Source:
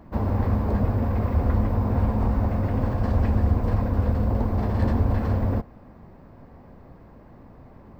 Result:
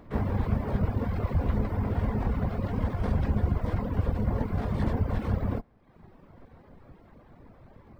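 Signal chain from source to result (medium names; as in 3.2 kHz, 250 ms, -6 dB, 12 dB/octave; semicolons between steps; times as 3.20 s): harmony voices -7 st -9 dB, +4 st -16 dB, +12 st -8 dB; reverb removal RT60 0.88 s; trim -4 dB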